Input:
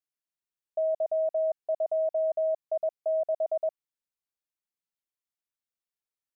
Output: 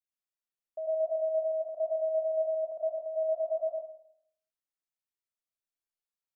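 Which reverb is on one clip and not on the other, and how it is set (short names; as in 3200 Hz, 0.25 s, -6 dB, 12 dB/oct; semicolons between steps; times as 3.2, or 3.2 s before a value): digital reverb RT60 0.68 s, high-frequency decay 0.9×, pre-delay 55 ms, DRR -2 dB; gain -9 dB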